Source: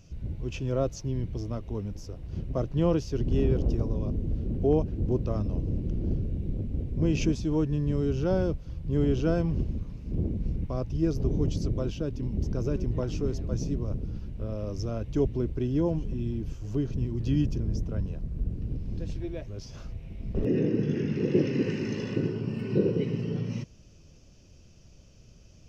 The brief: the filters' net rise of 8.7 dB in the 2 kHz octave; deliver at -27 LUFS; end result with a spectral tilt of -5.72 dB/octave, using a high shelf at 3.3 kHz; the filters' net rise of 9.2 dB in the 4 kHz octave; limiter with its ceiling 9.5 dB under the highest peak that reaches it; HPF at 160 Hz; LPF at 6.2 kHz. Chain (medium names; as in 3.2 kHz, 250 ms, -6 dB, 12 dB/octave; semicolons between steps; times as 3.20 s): high-pass 160 Hz; low-pass 6.2 kHz; peaking EQ 2 kHz +7 dB; treble shelf 3.3 kHz +7.5 dB; peaking EQ 4 kHz +5.5 dB; trim +6.5 dB; peak limiter -14.5 dBFS